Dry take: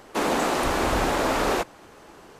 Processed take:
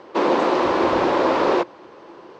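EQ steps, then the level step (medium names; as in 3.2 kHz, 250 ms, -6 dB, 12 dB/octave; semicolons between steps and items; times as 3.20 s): cabinet simulation 120–5000 Hz, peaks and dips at 350 Hz +10 dB, 530 Hz +8 dB, 1 kHz +8 dB; 0.0 dB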